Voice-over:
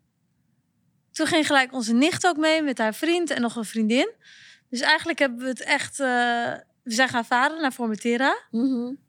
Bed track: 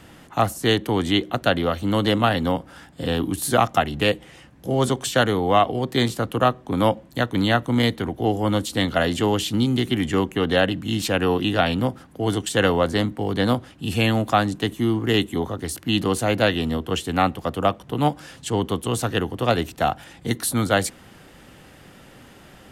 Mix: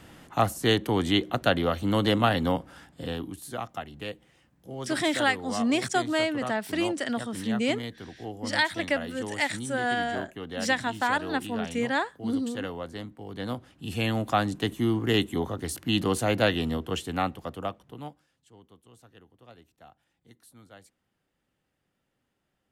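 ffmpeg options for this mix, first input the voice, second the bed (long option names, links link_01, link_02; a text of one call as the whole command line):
ffmpeg -i stem1.wav -i stem2.wav -filter_complex "[0:a]adelay=3700,volume=-5.5dB[link_01];[1:a]volume=9dB,afade=type=out:start_time=2.56:duration=0.86:silence=0.223872,afade=type=in:start_time=13.24:duration=1.46:silence=0.237137,afade=type=out:start_time=16.56:duration=1.7:silence=0.0421697[link_02];[link_01][link_02]amix=inputs=2:normalize=0" out.wav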